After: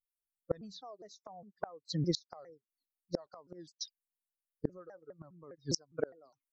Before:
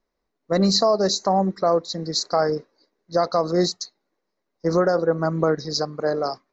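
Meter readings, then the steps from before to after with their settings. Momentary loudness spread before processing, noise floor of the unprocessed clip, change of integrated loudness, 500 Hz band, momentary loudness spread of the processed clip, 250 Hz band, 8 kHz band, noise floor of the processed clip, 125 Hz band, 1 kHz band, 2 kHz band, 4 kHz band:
8 LU, -78 dBFS, -18.0 dB, -21.5 dB, 18 LU, -17.5 dB, n/a, under -85 dBFS, -13.5 dB, -26.5 dB, -22.0 dB, -17.5 dB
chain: per-bin expansion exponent 2; flipped gate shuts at -25 dBFS, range -36 dB; shaped vibrato saw down 4.9 Hz, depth 250 cents; gain +7.5 dB

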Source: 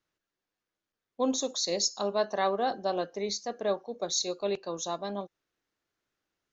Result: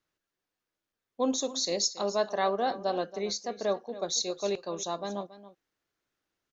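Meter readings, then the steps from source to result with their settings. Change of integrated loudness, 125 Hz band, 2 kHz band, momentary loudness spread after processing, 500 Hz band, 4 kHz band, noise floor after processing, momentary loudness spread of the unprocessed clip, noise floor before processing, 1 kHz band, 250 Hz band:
0.0 dB, 0.0 dB, 0.0 dB, 6 LU, 0.0 dB, 0.0 dB, under -85 dBFS, 6 LU, under -85 dBFS, 0.0 dB, 0.0 dB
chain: echo 0.278 s -15.5 dB

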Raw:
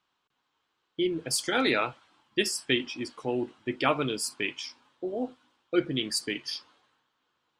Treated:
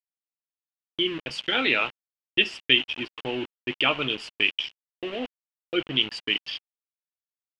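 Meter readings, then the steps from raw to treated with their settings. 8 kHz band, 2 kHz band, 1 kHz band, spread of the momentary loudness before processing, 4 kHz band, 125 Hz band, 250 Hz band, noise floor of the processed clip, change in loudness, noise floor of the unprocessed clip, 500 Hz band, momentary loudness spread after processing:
under -15 dB, +7.0 dB, -0.5 dB, 11 LU, +8.5 dB, -1.5 dB, -1.5 dB, under -85 dBFS, +4.5 dB, -79 dBFS, -1.5 dB, 14 LU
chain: in parallel at +3 dB: compressor 16:1, threshold -39 dBFS, peak gain reduction 21 dB; on the sum: sample gate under -32.5 dBFS; synth low-pass 2900 Hz, resonance Q 7.1; gain -3.5 dB

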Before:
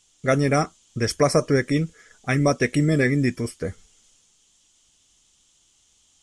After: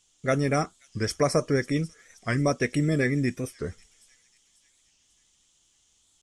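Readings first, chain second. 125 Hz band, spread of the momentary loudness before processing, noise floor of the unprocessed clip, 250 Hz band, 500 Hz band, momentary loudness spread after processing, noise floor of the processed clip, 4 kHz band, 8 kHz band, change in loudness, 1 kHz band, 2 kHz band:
-4.5 dB, 11 LU, -62 dBFS, -4.5 dB, -4.5 dB, 11 LU, -67 dBFS, -4.5 dB, -4.5 dB, -4.5 dB, -4.5 dB, -4.5 dB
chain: on a send: thin delay 0.541 s, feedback 47%, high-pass 4100 Hz, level -16 dB; on the sum: record warp 45 rpm, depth 160 cents; gain -4.5 dB

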